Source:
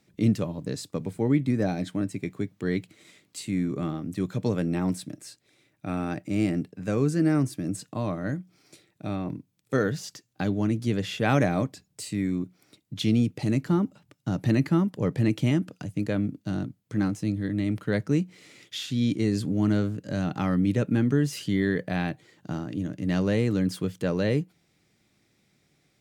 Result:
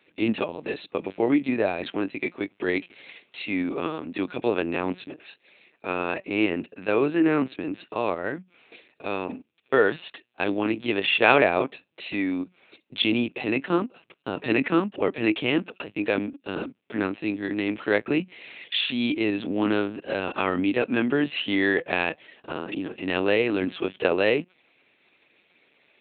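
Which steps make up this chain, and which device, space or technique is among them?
talking toy (LPC vocoder at 8 kHz pitch kept; HPF 390 Hz 12 dB/oct; bell 2600 Hz +9 dB 0.33 oct); gain +8.5 dB

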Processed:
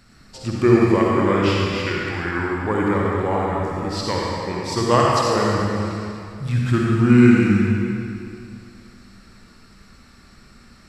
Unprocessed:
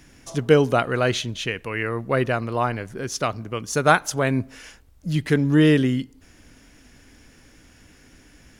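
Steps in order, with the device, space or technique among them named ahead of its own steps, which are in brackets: slowed and reverbed (varispeed -21%; reverb RT60 2.5 s, pre-delay 47 ms, DRR -4 dB); gain -2.5 dB

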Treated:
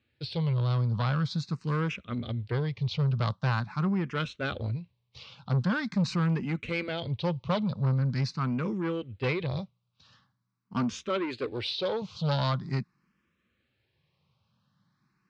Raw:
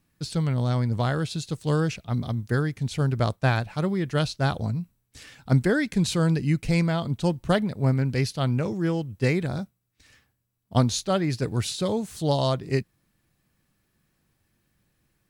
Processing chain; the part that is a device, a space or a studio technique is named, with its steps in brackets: 11.08–12.02 resonant low shelf 210 Hz -10 dB, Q 1.5; barber-pole phaser into a guitar amplifier (endless phaser +0.44 Hz; soft clip -24 dBFS, distortion -11 dB; speaker cabinet 110–4500 Hz, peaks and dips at 300 Hz -9 dB, 420 Hz -4 dB, 700 Hz -9 dB, 1100 Hz +4 dB, 1800 Hz -5 dB); gain +4 dB

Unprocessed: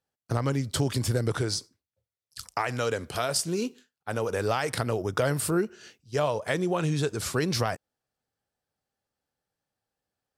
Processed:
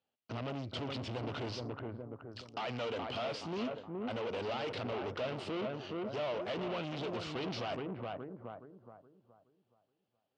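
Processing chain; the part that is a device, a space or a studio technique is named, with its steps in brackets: analogue delay pedal into a guitar amplifier (analogue delay 0.421 s, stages 4096, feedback 35%, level -8.5 dB; tube stage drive 37 dB, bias 0.55; speaker cabinet 110–4400 Hz, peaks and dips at 150 Hz -6 dB, 230 Hz +4 dB, 630 Hz +4 dB, 1700 Hz -6 dB, 2900 Hz +7 dB); gain +1 dB

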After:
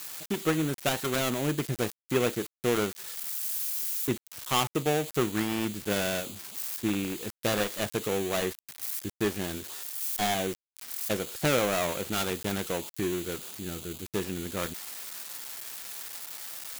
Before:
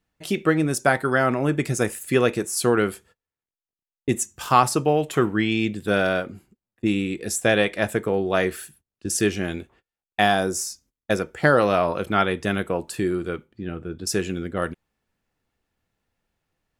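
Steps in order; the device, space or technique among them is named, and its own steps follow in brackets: budget class-D amplifier (switching dead time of 0.27 ms; switching spikes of -15 dBFS); gain -6.5 dB

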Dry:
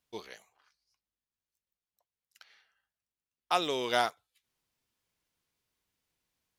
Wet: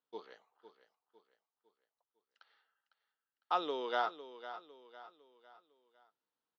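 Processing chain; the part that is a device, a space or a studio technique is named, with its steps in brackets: kitchen radio (speaker cabinet 220–4200 Hz, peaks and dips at 290 Hz +4 dB, 460 Hz +6 dB, 890 Hz +6 dB, 1300 Hz +7 dB, 2300 Hz -10 dB); 3.62–4.05 HPF 110 Hz -> 310 Hz 12 dB/oct; feedback echo 0.504 s, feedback 42%, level -13 dB; gain -8.5 dB

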